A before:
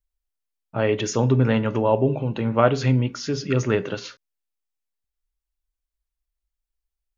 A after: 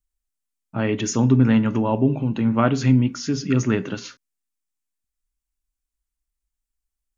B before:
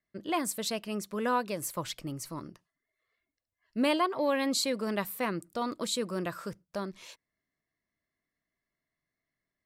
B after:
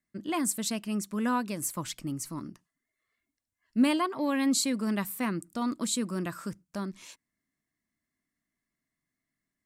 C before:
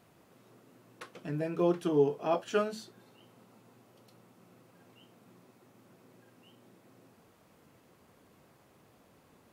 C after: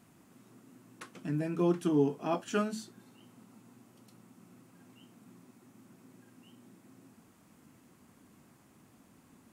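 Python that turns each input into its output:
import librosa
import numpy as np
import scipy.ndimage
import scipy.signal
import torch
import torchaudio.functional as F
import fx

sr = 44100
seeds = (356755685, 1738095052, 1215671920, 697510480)

y = fx.graphic_eq(x, sr, hz=(250, 500, 4000, 8000), db=(8, -8, -3, 6))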